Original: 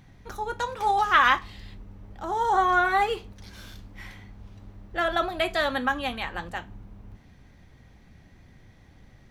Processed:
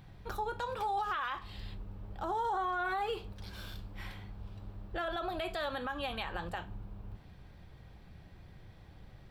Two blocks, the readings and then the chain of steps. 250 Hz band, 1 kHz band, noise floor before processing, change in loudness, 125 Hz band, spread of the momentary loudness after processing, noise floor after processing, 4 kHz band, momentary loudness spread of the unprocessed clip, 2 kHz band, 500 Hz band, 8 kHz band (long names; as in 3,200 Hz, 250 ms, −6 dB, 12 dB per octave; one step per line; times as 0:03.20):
−9.0 dB, −11.0 dB, −54 dBFS, −13.0 dB, −2.5 dB, 22 LU, −55 dBFS, −10.5 dB, 23 LU, −14.0 dB, −8.5 dB, −12.5 dB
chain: thirty-one-band graphic EQ 250 Hz −10 dB, 2,000 Hz −7 dB, 6,300 Hz −11 dB, 10,000 Hz −5 dB
downward compressor 2.5 to 1, threshold −30 dBFS, peak gain reduction 10 dB
brickwall limiter −27 dBFS, peak gain reduction 9.5 dB